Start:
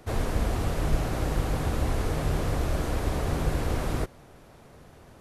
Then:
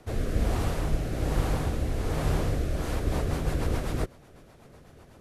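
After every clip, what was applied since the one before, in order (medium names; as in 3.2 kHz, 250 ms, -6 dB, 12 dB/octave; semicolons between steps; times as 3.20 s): rotary cabinet horn 1.2 Hz, later 8 Hz, at 2.64 s; trim +1 dB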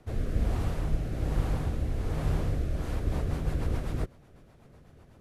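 tone controls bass +5 dB, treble -3 dB; trim -6 dB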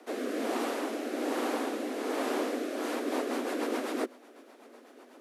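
steep high-pass 240 Hz 96 dB/octave; trim +7.5 dB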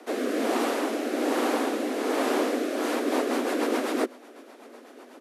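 resampled via 32 kHz; trim +6 dB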